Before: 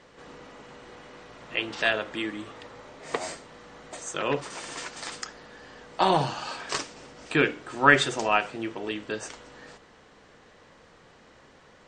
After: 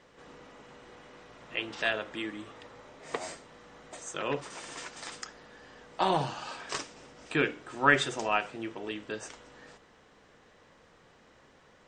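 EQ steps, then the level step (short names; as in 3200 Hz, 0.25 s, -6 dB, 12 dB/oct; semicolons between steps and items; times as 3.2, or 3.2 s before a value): notch 4400 Hz, Q 20; -5.0 dB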